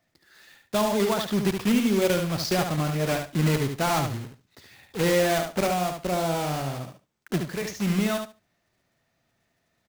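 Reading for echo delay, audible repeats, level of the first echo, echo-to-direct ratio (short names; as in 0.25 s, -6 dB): 72 ms, 2, -6.0 dB, -6.0 dB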